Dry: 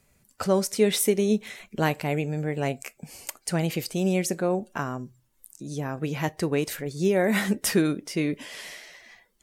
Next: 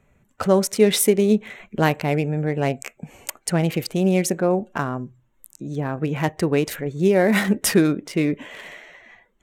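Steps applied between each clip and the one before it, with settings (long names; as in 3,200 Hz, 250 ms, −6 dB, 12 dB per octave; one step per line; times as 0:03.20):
adaptive Wiener filter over 9 samples
level +5.5 dB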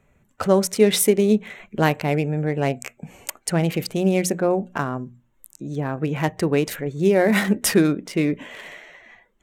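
mains-hum notches 60/120/180/240 Hz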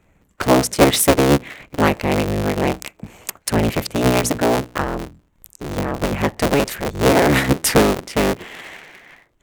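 sub-harmonics by changed cycles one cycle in 3, inverted
level +3 dB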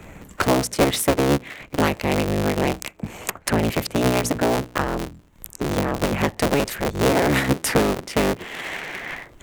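multiband upward and downward compressor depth 70%
level −3.5 dB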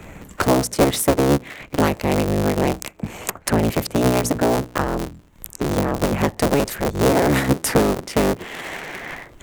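dynamic equaliser 2,600 Hz, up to −5 dB, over −36 dBFS, Q 0.76
level +2.5 dB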